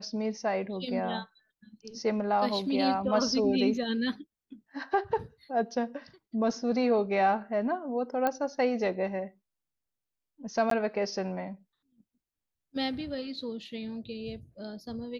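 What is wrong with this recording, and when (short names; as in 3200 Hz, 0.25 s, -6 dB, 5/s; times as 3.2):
8.27 pop -15 dBFS
10.7–10.71 gap 13 ms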